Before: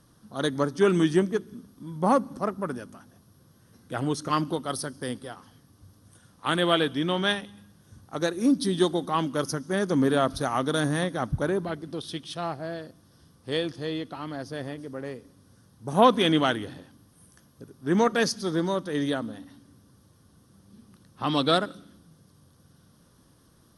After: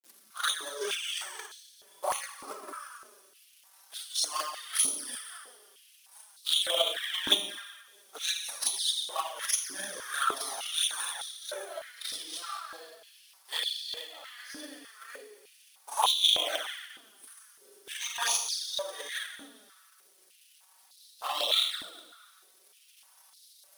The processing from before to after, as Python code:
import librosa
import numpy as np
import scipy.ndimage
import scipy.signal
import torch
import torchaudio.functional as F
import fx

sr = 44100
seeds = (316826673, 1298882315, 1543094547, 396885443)

y = np.diff(x, prepend=0.0)
y = fx.rev_schroeder(y, sr, rt60_s=1.2, comb_ms=29, drr_db=-9.5)
y = fx.quant_companded(y, sr, bits=4)
y = fx.transient(y, sr, attack_db=12, sustain_db=-4)
y = fx.env_flanger(y, sr, rest_ms=5.9, full_db=-21.5)
y = fx.filter_held_highpass(y, sr, hz=3.3, low_hz=280.0, high_hz=4000.0)
y = F.gain(torch.from_numpy(y), -3.0).numpy()